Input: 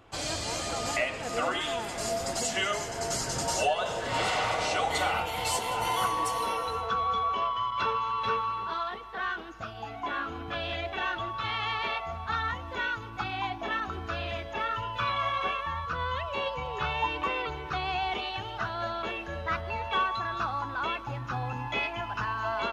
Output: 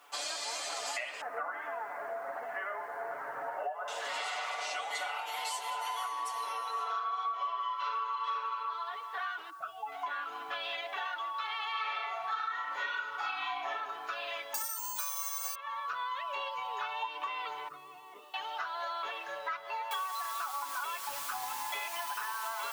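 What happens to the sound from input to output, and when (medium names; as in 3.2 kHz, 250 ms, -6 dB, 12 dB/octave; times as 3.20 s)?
1.21–3.88 s: steep low-pass 1.8 kHz
6.71–8.57 s: reverb throw, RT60 0.96 s, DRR -9 dB
9.50–9.92 s: spectral contrast enhancement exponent 1.8
11.71–13.69 s: reverb throw, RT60 0.86 s, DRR -8.5 dB
14.54–15.55 s: careless resampling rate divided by 6×, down none, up zero stuff
17.68–18.34 s: boxcar filter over 56 samples
19.91 s: noise floor step -69 dB -40 dB
21.96–22.42 s: band-stop 7.1 kHz
whole clip: Chebyshev high-pass 900 Hz, order 2; comb 6.9 ms; compression, threshold -34 dBFS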